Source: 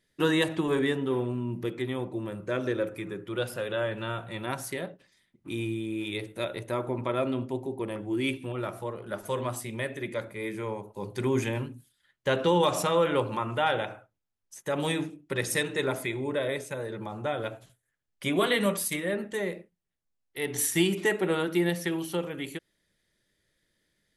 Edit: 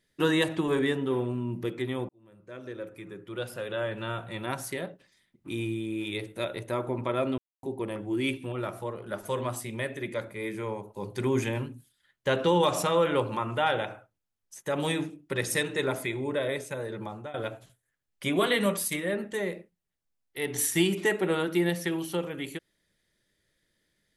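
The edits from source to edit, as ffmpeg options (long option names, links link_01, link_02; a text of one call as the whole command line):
ffmpeg -i in.wav -filter_complex "[0:a]asplit=5[link_01][link_02][link_03][link_04][link_05];[link_01]atrim=end=2.09,asetpts=PTS-STARTPTS,afade=type=out:start_time=2.086:duration=0.004:curve=hsin[link_06];[link_02]atrim=start=2.09:end=7.38,asetpts=PTS-STARTPTS,afade=type=in:duration=2.1,afade=type=out:start_time=5.286:duration=0.004:curve=hsin[link_07];[link_03]atrim=start=7.38:end=7.63,asetpts=PTS-STARTPTS,volume=0[link_08];[link_04]atrim=start=7.63:end=17.34,asetpts=PTS-STARTPTS,afade=type=in:duration=0.004:curve=hsin,afade=type=out:start_time=9.44:duration=0.27:silence=0.141254[link_09];[link_05]atrim=start=17.34,asetpts=PTS-STARTPTS,afade=type=in:duration=0.004:curve=hsin:silence=0.141254[link_10];[link_06][link_07][link_08][link_09][link_10]concat=n=5:v=0:a=1" out.wav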